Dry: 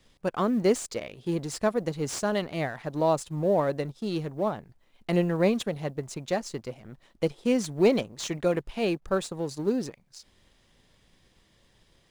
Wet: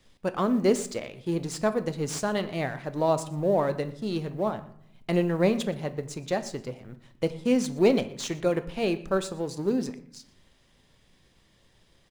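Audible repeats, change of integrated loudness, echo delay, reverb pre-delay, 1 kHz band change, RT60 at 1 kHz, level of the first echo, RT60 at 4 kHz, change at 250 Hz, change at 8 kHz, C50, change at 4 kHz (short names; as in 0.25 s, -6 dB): 1, +0.5 dB, 0.12 s, 8 ms, 0.0 dB, 0.60 s, -21.0 dB, 0.40 s, +1.0 dB, 0.0 dB, 14.0 dB, 0.0 dB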